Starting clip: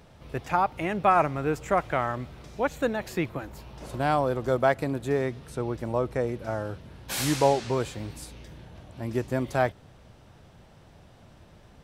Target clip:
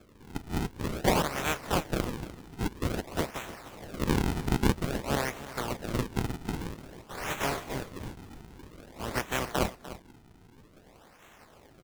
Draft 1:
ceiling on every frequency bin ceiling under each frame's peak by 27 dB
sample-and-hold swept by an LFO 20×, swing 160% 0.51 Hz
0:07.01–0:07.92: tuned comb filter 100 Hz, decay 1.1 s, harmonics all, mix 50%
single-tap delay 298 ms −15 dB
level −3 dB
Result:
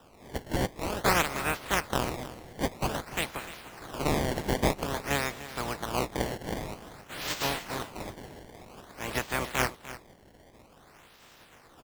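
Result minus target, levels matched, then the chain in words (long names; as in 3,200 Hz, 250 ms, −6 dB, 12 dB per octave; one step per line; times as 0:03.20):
sample-and-hold swept by an LFO: distortion −6 dB
ceiling on every frequency bin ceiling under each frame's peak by 27 dB
sample-and-hold swept by an LFO 45×, swing 160% 0.51 Hz
0:07.01–0:07.92: tuned comb filter 100 Hz, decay 1.1 s, harmonics all, mix 50%
single-tap delay 298 ms −15 dB
level −3 dB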